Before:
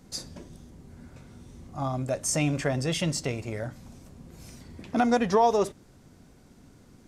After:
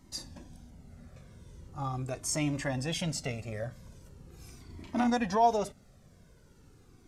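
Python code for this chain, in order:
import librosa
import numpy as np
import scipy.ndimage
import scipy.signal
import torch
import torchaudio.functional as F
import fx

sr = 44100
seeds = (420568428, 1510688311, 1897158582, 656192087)

y = fx.doubler(x, sr, ms=34.0, db=-5.0, at=(4.66, 5.1))
y = fx.comb_cascade(y, sr, direction='falling', hz=0.41)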